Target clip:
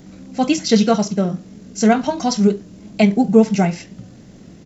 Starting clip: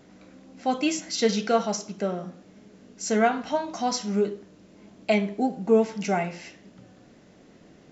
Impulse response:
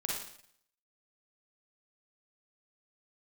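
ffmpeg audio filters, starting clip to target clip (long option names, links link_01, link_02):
-filter_complex "[0:a]acrossover=split=5600[link_01][link_02];[link_02]acompressor=threshold=-47dB:ratio=4:attack=1:release=60[link_03];[link_01][link_03]amix=inputs=2:normalize=0,atempo=1.7,bass=frequency=250:gain=12,treble=frequency=4000:gain=8,volume=5.5dB"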